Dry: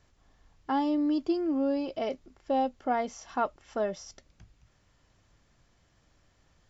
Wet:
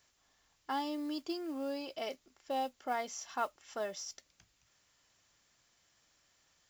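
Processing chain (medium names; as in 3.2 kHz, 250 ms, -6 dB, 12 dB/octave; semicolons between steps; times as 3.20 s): tilt EQ +3.5 dB/octave; modulation noise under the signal 26 dB; trim -5.5 dB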